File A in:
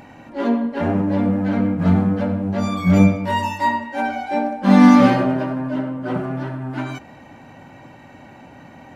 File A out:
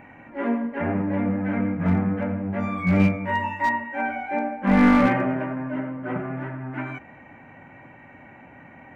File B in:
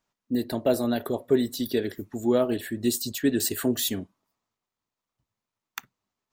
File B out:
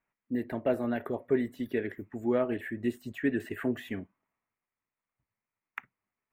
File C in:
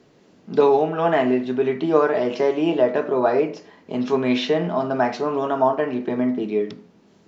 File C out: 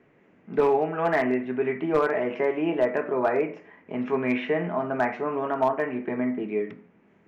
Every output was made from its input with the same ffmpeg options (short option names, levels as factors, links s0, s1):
-filter_complex "[0:a]highshelf=f=3100:t=q:w=3:g=-12.5,acrossover=split=3900[s0][s1];[s1]acompressor=threshold=0.00282:ratio=4:attack=1:release=60[s2];[s0][s2]amix=inputs=2:normalize=0,aeval=exprs='clip(val(0),-1,0.335)':c=same,volume=0.531"